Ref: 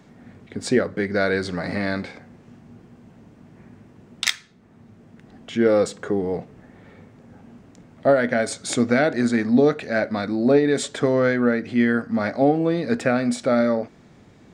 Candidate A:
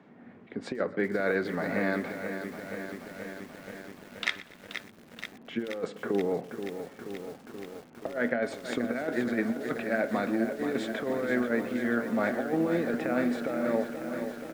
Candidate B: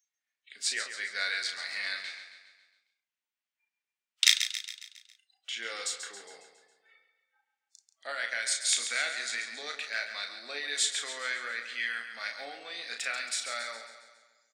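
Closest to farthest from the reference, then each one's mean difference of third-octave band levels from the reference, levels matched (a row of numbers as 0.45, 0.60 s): A, B; 10.0, 14.0 dB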